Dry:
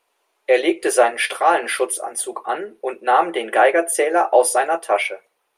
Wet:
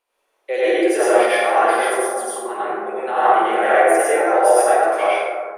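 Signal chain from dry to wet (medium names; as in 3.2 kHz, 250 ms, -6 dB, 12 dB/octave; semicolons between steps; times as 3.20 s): flutter echo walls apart 8.8 m, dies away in 0.43 s; plate-style reverb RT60 1.7 s, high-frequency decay 0.3×, pre-delay 80 ms, DRR -9.5 dB; trim -9.5 dB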